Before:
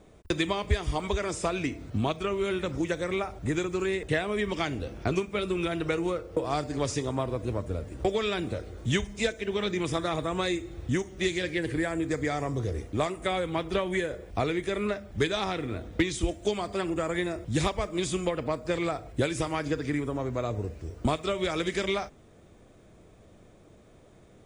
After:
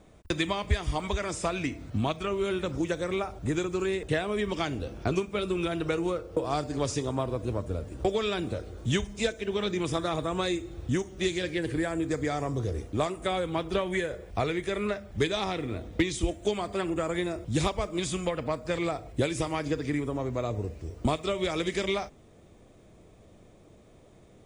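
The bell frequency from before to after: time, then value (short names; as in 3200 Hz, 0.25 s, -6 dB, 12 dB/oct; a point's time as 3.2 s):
bell -4.5 dB 0.45 oct
410 Hz
from 2.27 s 2000 Hz
from 13.81 s 280 Hz
from 15.17 s 1500 Hz
from 16.29 s 5100 Hz
from 17.02 s 1800 Hz
from 17.99 s 370 Hz
from 18.79 s 1500 Hz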